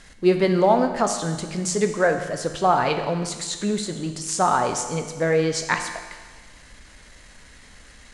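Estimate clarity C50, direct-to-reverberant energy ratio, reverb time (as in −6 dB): 8.0 dB, 6.0 dB, 1.5 s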